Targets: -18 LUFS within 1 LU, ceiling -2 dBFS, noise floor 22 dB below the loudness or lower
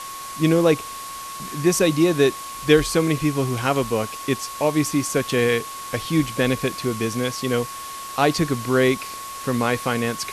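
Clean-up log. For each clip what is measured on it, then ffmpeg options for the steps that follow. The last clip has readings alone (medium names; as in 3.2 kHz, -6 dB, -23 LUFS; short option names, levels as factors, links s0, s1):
steady tone 1.1 kHz; tone level -33 dBFS; noise floor -34 dBFS; noise floor target -44 dBFS; loudness -21.5 LUFS; peak level -3.0 dBFS; loudness target -18.0 LUFS
-> -af "bandreject=f=1100:w=30"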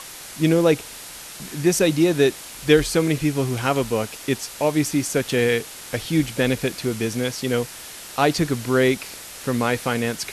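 steady tone not found; noise floor -38 dBFS; noise floor target -44 dBFS
-> -af "afftdn=nr=6:nf=-38"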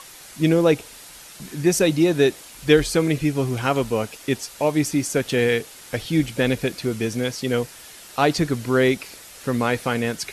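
noise floor -43 dBFS; noise floor target -44 dBFS
-> -af "afftdn=nr=6:nf=-43"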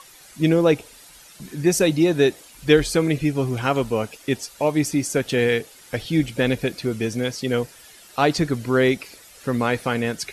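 noise floor -47 dBFS; loudness -22.0 LUFS; peak level -3.5 dBFS; loudness target -18.0 LUFS
-> -af "volume=1.58,alimiter=limit=0.794:level=0:latency=1"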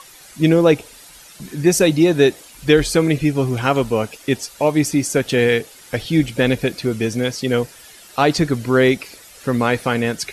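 loudness -18.0 LUFS; peak level -2.0 dBFS; noise floor -43 dBFS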